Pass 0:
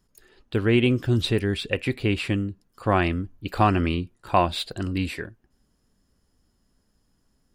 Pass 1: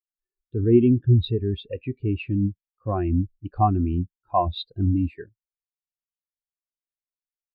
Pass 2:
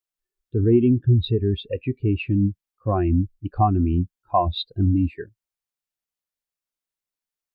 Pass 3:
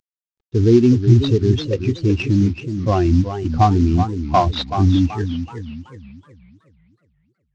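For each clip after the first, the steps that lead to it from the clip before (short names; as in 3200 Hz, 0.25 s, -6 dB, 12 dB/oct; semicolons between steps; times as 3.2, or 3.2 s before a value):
in parallel at -2 dB: negative-ratio compressor -27 dBFS, ratio -0.5; on the sum: spectral expander 2.5:1
compressor 2:1, threshold -21 dBFS, peak gain reduction 6 dB; gain +4.5 dB
CVSD 32 kbps; warbling echo 0.373 s, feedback 40%, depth 193 cents, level -9 dB; gain +5 dB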